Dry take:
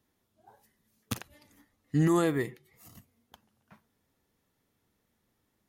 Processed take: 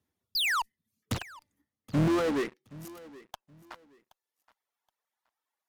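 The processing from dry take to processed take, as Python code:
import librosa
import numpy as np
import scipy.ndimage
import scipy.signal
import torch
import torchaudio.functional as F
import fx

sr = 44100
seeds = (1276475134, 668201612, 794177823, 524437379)

p1 = fx.octave_divider(x, sr, octaves=2, level_db=-1.0, at=(1.14, 2.34))
p2 = fx.dereverb_blind(p1, sr, rt60_s=1.6)
p3 = fx.env_lowpass_down(p2, sr, base_hz=1500.0, full_db=-25.0)
p4 = fx.spec_paint(p3, sr, seeds[0], shape='fall', start_s=0.35, length_s=0.27, low_hz=870.0, high_hz=5100.0, level_db=-30.0)
p5 = fx.filter_sweep_highpass(p4, sr, from_hz=78.0, to_hz=870.0, start_s=1.28, end_s=3.71, q=1.7)
p6 = fx.fuzz(p5, sr, gain_db=46.0, gate_db=-55.0)
p7 = p5 + (p6 * librosa.db_to_amplitude(-10.0))
p8 = fx.echo_feedback(p7, sr, ms=773, feedback_pct=25, wet_db=-20.5)
p9 = fx.doppler_dist(p8, sr, depth_ms=0.48)
y = p9 * librosa.db_to_amplitude(-7.0)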